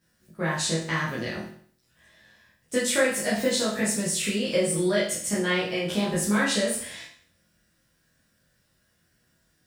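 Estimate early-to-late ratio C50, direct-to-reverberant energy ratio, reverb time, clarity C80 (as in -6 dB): 4.5 dB, -8.0 dB, 0.55 s, 8.5 dB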